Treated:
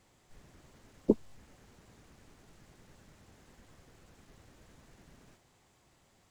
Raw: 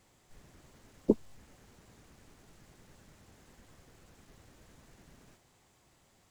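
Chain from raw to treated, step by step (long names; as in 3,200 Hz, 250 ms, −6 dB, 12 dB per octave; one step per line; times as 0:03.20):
high-shelf EQ 8,500 Hz −4.5 dB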